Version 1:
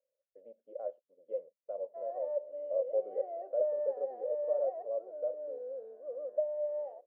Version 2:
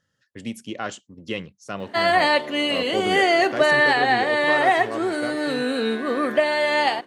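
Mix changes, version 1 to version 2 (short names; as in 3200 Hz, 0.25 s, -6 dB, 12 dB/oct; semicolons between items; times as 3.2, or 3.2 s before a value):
background +10.5 dB; master: remove Butterworth band-pass 560 Hz, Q 4.5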